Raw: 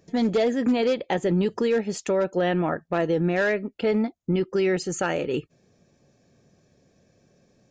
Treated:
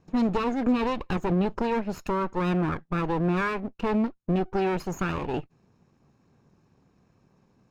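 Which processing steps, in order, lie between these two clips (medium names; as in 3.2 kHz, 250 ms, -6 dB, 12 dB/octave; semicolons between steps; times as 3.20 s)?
comb filter that takes the minimum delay 0.74 ms; treble shelf 2.9 kHz -11.5 dB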